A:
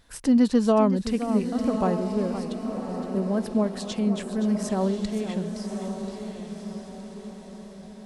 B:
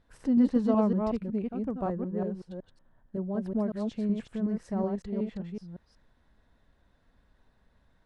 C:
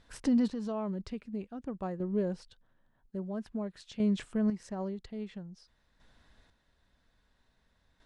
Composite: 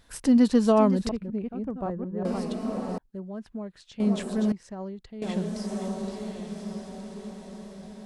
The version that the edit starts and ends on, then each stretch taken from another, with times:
A
1.09–2.25 s: from B
2.98–4.00 s: from C
4.52–5.22 s: from C

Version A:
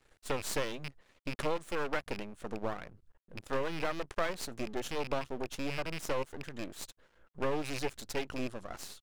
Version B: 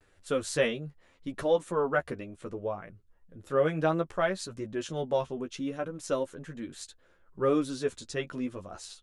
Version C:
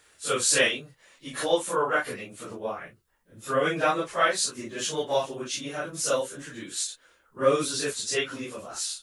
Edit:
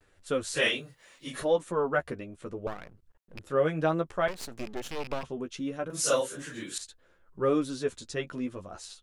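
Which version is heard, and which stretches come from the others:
B
0.61–1.38 s: from C, crossfade 0.16 s
2.67–3.39 s: from A
4.28–5.23 s: from A
5.90–6.78 s: from C

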